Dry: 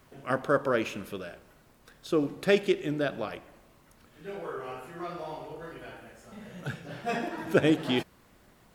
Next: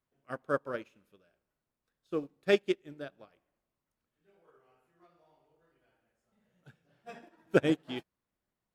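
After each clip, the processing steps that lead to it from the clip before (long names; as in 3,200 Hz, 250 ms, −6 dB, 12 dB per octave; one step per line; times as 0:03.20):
expander for the loud parts 2.5 to 1, over −37 dBFS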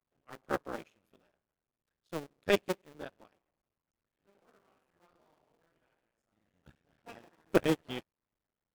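sub-harmonics by changed cycles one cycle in 2, muted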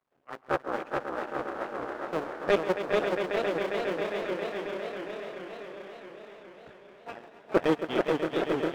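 echo that builds up and dies away 135 ms, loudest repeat 5, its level −13 dB
mid-hump overdrive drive 19 dB, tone 1,200 Hz, clips at −10.5 dBFS
feedback echo with a swinging delay time 431 ms, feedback 59%, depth 167 cents, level −3.5 dB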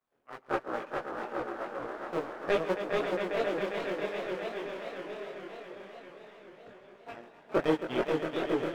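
multi-voice chorus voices 6, 0.61 Hz, delay 21 ms, depth 4.9 ms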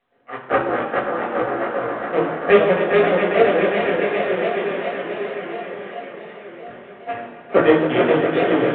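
convolution reverb RT60 0.85 s, pre-delay 3 ms, DRR 0 dB
level +1 dB
mu-law 64 kbit/s 8,000 Hz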